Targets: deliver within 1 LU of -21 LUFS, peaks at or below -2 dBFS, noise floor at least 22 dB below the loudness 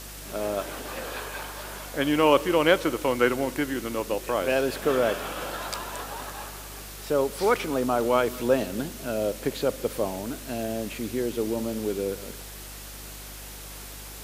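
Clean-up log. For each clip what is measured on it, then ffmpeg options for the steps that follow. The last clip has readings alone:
hum 50 Hz; harmonics up to 300 Hz; hum level -42 dBFS; noise floor -41 dBFS; noise floor target -49 dBFS; loudness -27.0 LUFS; peak -4.5 dBFS; loudness target -21.0 LUFS
-> -af "bandreject=f=50:t=h:w=4,bandreject=f=100:t=h:w=4,bandreject=f=150:t=h:w=4,bandreject=f=200:t=h:w=4,bandreject=f=250:t=h:w=4,bandreject=f=300:t=h:w=4"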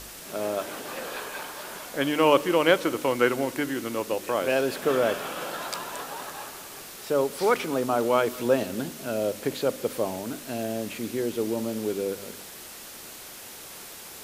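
hum none; noise floor -43 dBFS; noise floor target -49 dBFS
-> -af "afftdn=nr=6:nf=-43"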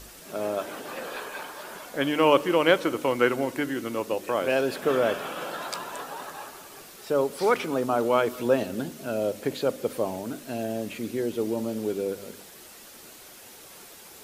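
noise floor -48 dBFS; noise floor target -49 dBFS
-> -af "afftdn=nr=6:nf=-48"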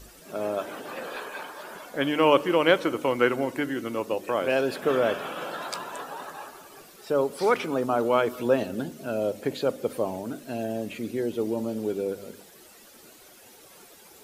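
noise floor -52 dBFS; loudness -27.0 LUFS; peak -4.5 dBFS; loudness target -21.0 LUFS
-> -af "volume=6dB,alimiter=limit=-2dB:level=0:latency=1"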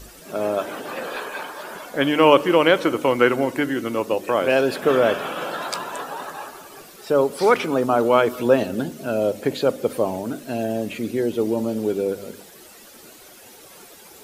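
loudness -21.5 LUFS; peak -2.0 dBFS; noise floor -46 dBFS

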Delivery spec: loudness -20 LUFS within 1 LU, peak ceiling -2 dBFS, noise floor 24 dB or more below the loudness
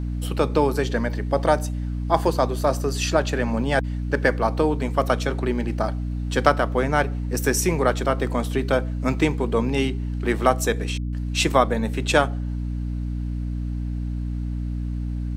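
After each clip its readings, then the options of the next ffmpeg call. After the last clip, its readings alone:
hum 60 Hz; harmonics up to 300 Hz; hum level -24 dBFS; loudness -23.5 LUFS; peak -1.5 dBFS; loudness target -20.0 LUFS
-> -af "bandreject=f=60:t=h:w=6,bandreject=f=120:t=h:w=6,bandreject=f=180:t=h:w=6,bandreject=f=240:t=h:w=6,bandreject=f=300:t=h:w=6"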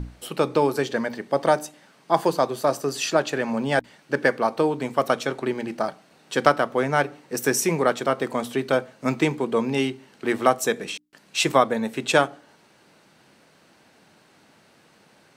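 hum none; loudness -24.0 LUFS; peak -1.5 dBFS; loudness target -20.0 LUFS
-> -af "volume=4dB,alimiter=limit=-2dB:level=0:latency=1"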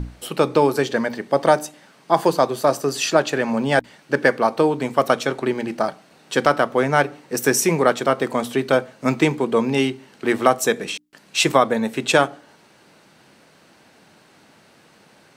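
loudness -20.0 LUFS; peak -2.0 dBFS; noise floor -53 dBFS

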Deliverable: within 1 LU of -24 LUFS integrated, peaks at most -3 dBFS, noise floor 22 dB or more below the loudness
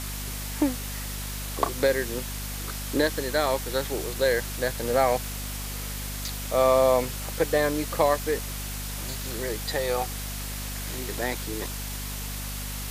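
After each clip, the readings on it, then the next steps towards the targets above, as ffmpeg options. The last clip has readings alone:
hum 50 Hz; harmonics up to 250 Hz; hum level -33 dBFS; noise floor -34 dBFS; noise floor target -50 dBFS; loudness -27.5 LUFS; peak -7.5 dBFS; loudness target -24.0 LUFS
-> -af "bandreject=f=50:t=h:w=4,bandreject=f=100:t=h:w=4,bandreject=f=150:t=h:w=4,bandreject=f=200:t=h:w=4,bandreject=f=250:t=h:w=4"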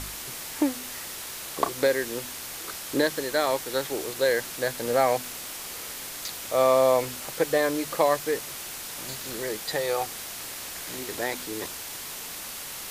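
hum none; noise floor -38 dBFS; noise floor target -50 dBFS
-> -af "afftdn=nr=12:nf=-38"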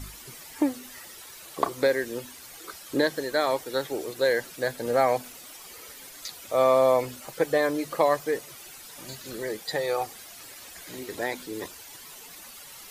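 noise floor -46 dBFS; noise floor target -49 dBFS
-> -af "afftdn=nr=6:nf=-46"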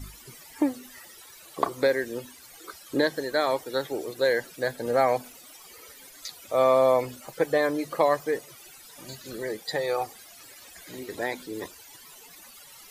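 noise floor -49 dBFS; loudness -27.0 LUFS; peak -7.5 dBFS; loudness target -24.0 LUFS
-> -af "volume=3dB"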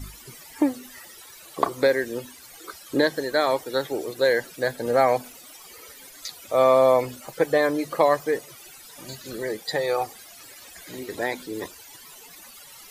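loudness -24.0 LUFS; peak -4.5 dBFS; noise floor -46 dBFS

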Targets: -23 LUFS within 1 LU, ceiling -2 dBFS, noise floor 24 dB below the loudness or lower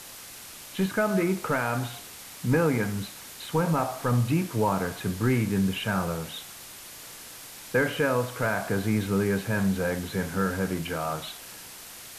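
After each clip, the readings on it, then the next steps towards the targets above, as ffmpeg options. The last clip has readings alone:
noise floor -44 dBFS; noise floor target -52 dBFS; loudness -27.5 LUFS; peak -13.0 dBFS; loudness target -23.0 LUFS
-> -af "afftdn=nr=8:nf=-44"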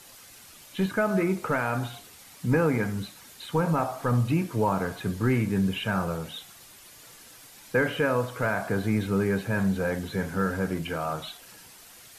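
noise floor -50 dBFS; noise floor target -52 dBFS
-> -af "afftdn=nr=6:nf=-50"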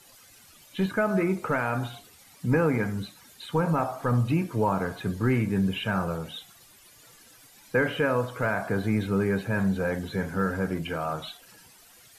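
noise floor -54 dBFS; loudness -27.5 LUFS; peak -13.5 dBFS; loudness target -23.0 LUFS
-> -af "volume=4.5dB"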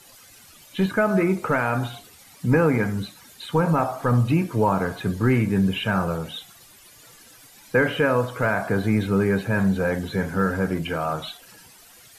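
loudness -23.0 LUFS; peak -9.0 dBFS; noise floor -50 dBFS

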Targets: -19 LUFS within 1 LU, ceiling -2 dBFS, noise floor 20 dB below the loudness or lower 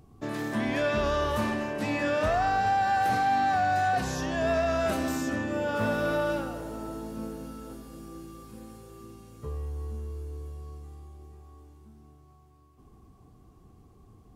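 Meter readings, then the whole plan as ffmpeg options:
loudness -28.5 LUFS; peak -18.5 dBFS; loudness target -19.0 LUFS
-> -af "volume=9.5dB"

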